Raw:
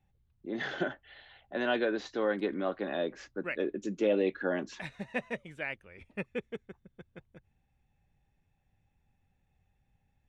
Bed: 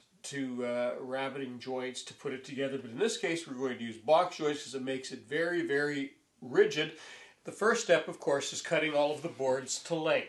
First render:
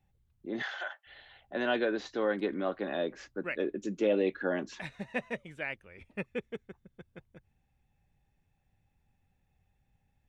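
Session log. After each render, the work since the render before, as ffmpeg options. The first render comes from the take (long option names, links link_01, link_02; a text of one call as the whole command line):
ffmpeg -i in.wav -filter_complex "[0:a]asettb=1/sr,asplit=3[link_01][link_02][link_03];[link_01]atrim=end=0.624[link_04];[link_02]atrim=start=0.62:end=1.07,asetpts=PTS-STARTPTS,afade=type=in:duration=0.004:curve=qsin,afade=type=out:start_time=0.446:duration=0.004:curve=qsin,highpass=frequency=750:width=0.5412,highpass=frequency=750:width=1.3066[link_05];[link_03]atrim=start=1.066[link_06];[link_04][link_05]acrossfade=duration=0.004:curve1=hsin:curve2=qsin[link_07];[link_07][link_06]acrossfade=duration=0.004:curve1=qsin:curve2=hsin" out.wav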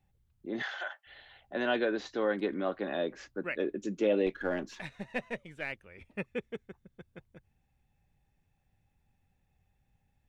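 ffmpeg -i in.wav -filter_complex "[0:a]asettb=1/sr,asplit=3[link_01][link_02][link_03];[link_01]atrim=end=4.264[link_04];[link_02]atrim=start=4.26:end=5.72,asetpts=PTS-STARTPTS,afade=type=in:duration=0.004:curve=qsin,afade=type=out:start_time=1.456:duration=0.004:curve=qsin,aeval=exprs='if(lt(val(0),0),0.708*val(0),val(0))':channel_layout=same[link_05];[link_03]atrim=start=5.716[link_06];[link_04][link_05]acrossfade=duration=0.004:curve1=hsin:curve2=qsin[link_07];[link_07][link_06]acrossfade=duration=0.004:curve1=qsin:curve2=hsin" out.wav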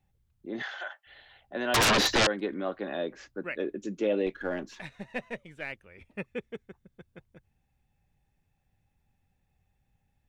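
ffmpeg -i in.wav -filter_complex "[0:a]asettb=1/sr,asplit=3[link_01][link_02][link_03];[link_01]atrim=end=1.744[link_04];[link_02]atrim=start=1.74:end=2.27,asetpts=PTS-STARTPTS,afade=type=in:duration=0.004:curve=qsin,afade=type=out:start_time=0.526:duration=0.004:curve=qsin,aeval=exprs='0.112*sin(PI/2*8.91*val(0)/0.112)':channel_layout=same[link_05];[link_03]atrim=start=2.266[link_06];[link_04][link_05]acrossfade=duration=0.004:curve1=hsin:curve2=qsin[link_07];[link_07][link_06]acrossfade=duration=0.004:curve1=qsin:curve2=hsin" out.wav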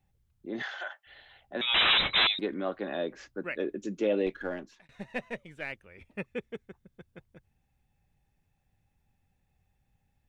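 ffmpeg -i in.wav -filter_complex "[0:a]asettb=1/sr,asplit=3[link_01][link_02][link_03];[link_01]atrim=end=1.614[link_04];[link_02]atrim=start=1.61:end=2.39,asetpts=PTS-STARTPTS,afade=type=in:duration=0.004:curve=qsin,afade=type=out:start_time=0.776:duration=0.004:curve=qsin,lowpass=frequency=3400:width_type=q:width=0.5098,lowpass=frequency=3400:width_type=q:width=0.6013,lowpass=frequency=3400:width_type=q:width=0.9,lowpass=frequency=3400:width_type=q:width=2.563,afreqshift=-4000[link_05];[link_03]atrim=start=2.386[link_06];[link_04][link_05]acrossfade=duration=0.004:curve1=hsin:curve2=qsin[link_07];[link_07][link_06]acrossfade=duration=0.004:curve1=qsin:curve2=hsin,asplit=2[link_08][link_09];[link_08]atrim=end=4.89,asetpts=PTS-STARTPTS,afade=type=out:start_time=4.36:duration=0.53[link_10];[link_09]atrim=start=4.89,asetpts=PTS-STARTPTS,afade=type=in:duration=0.004:curve=hsin[link_11];[link_10][link_11]concat=n=2:v=0:a=1" out.wav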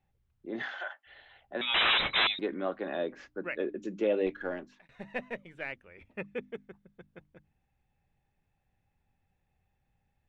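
ffmpeg -i in.wav -af "bass=frequency=250:gain=-3,treble=frequency=4000:gain=-10,bandreject=frequency=50:width_type=h:width=6,bandreject=frequency=100:width_type=h:width=6,bandreject=frequency=150:width_type=h:width=6,bandreject=frequency=200:width_type=h:width=6,bandreject=frequency=250:width_type=h:width=6,bandreject=frequency=300:width_type=h:width=6" out.wav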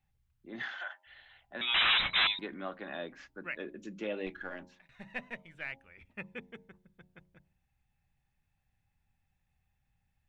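ffmpeg -i in.wav -af "equalizer=frequency=440:width=0.87:gain=-11,bandreject=frequency=90.51:width_type=h:width=4,bandreject=frequency=181.02:width_type=h:width=4,bandreject=frequency=271.53:width_type=h:width=4,bandreject=frequency=362.04:width_type=h:width=4,bandreject=frequency=452.55:width_type=h:width=4,bandreject=frequency=543.06:width_type=h:width=4,bandreject=frequency=633.57:width_type=h:width=4,bandreject=frequency=724.08:width_type=h:width=4,bandreject=frequency=814.59:width_type=h:width=4,bandreject=frequency=905.1:width_type=h:width=4,bandreject=frequency=995.61:width_type=h:width=4" out.wav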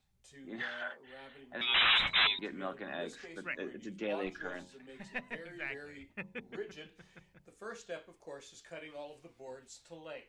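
ffmpeg -i in.wav -i bed.wav -filter_complex "[1:a]volume=-17.5dB[link_01];[0:a][link_01]amix=inputs=2:normalize=0" out.wav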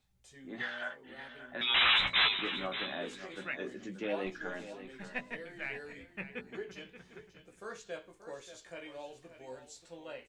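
ffmpeg -i in.wav -filter_complex "[0:a]asplit=2[link_01][link_02];[link_02]adelay=16,volume=-7.5dB[link_03];[link_01][link_03]amix=inputs=2:normalize=0,aecho=1:1:581|1162:0.251|0.0427" out.wav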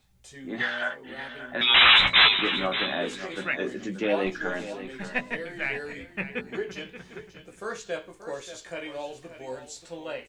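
ffmpeg -i in.wav -af "volume=10dB" out.wav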